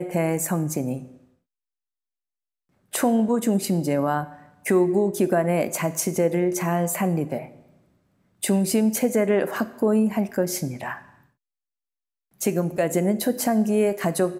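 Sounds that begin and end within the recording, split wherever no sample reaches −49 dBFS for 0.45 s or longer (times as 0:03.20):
0:02.92–0:07.77
0:08.42–0:11.24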